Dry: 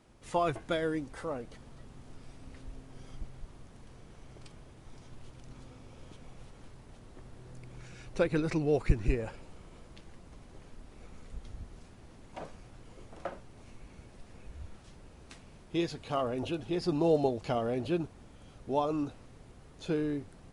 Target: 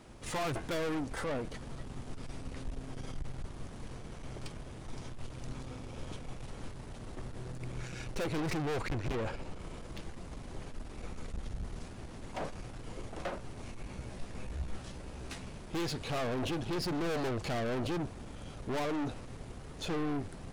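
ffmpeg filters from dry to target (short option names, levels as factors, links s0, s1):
-filter_complex "[0:a]asettb=1/sr,asplit=3[s0][s1][s2];[s0]atrim=end=8.814[s3];[s1]atrim=start=8.81:end=9.59,asetpts=PTS-STARTPTS,afade=t=in:d=0.004:c=qsin,afade=t=out:st=0.776:d=0.004:c=qsin,highshelf=f=8100:g=-8.5[s4];[s2]atrim=start=9.586[s5];[s3][s4]acrossfade=d=0.004:c1=hsin:c2=qsin[s6];[s6][s5]acrossfade=d=0.004:c1=qsin:c2=hsin,aeval=exprs='(tanh(126*val(0)+0.4)-tanh(0.4))/126':c=same,asettb=1/sr,asplit=3[s7][s8][s9];[s7]atrim=end=13.884[s10];[s8]atrim=start=13.88:end=15.49,asetpts=PTS-STARTPTS,afade=t=in:d=0.004:c=qsin,afade=t=out:st=1.606:d=0.004:c=qsin,asplit=2[s11][s12];[s12]adelay=16,volume=0.501[s13];[s11][s13]amix=inputs=2:normalize=0,atrim=end_sample=71001[s14];[s9]atrim=start=15.486[s15];[s10][s14]acrossfade=d=0.004:c1=hsin:c2=qsin[s16];[s16][s15]acrossfade=d=0.004:c1=qsin:c2=hsin,volume=2.99"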